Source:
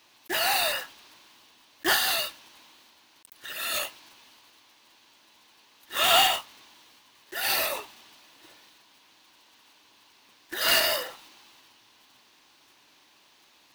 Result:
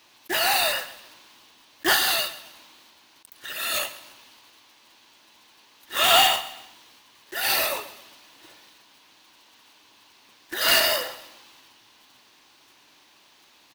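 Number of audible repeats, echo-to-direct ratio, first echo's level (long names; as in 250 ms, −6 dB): 3, −16.0 dB, −16.5 dB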